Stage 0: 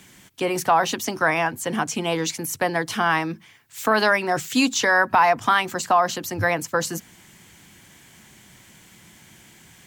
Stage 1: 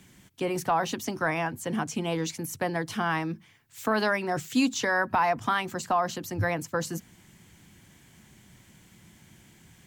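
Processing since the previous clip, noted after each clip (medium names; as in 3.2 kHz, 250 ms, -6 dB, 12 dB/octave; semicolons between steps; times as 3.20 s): bass shelf 310 Hz +9 dB; trim -8.5 dB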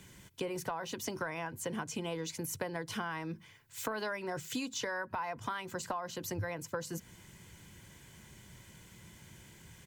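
comb 2 ms, depth 39%; compression 10:1, threshold -34 dBFS, peak gain reduction 15.5 dB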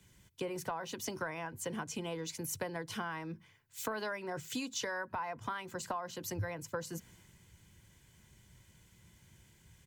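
three bands expanded up and down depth 40%; trim -1.5 dB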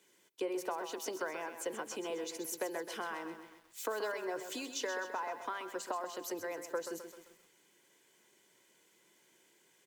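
ladder high-pass 310 Hz, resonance 40%; bit-crushed delay 130 ms, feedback 55%, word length 11-bit, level -9 dB; trim +6.5 dB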